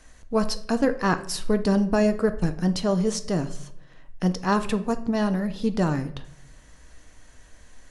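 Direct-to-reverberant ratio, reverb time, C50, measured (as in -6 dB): 9.0 dB, 0.70 s, 14.0 dB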